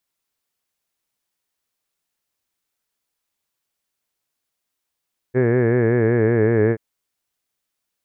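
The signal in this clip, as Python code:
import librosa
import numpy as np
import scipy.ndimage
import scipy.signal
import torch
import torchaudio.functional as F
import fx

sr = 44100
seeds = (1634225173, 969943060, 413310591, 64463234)

y = fx.formant_vowel(sr, seeds[0], length_s=1.43, hz=123.0, glide_st=-2.0, vibrato_hz=5.3, vibrato_st=0.9, f1_hz=420.0, f2_hz=1700.0, f3_hz=2200.0)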